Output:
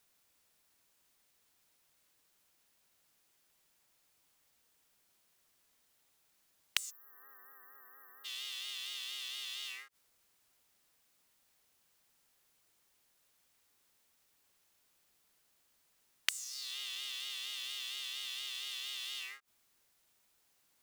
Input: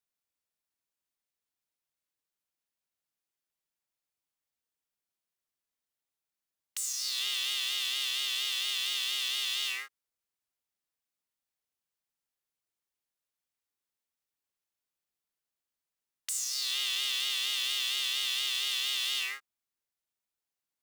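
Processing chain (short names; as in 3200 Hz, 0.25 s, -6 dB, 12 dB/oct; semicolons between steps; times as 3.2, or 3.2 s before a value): flipped gate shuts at -28 dBFS, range -27 dB; spectral delete 6.9–8.25, 1900–12000 Hz; gain +16.5 dB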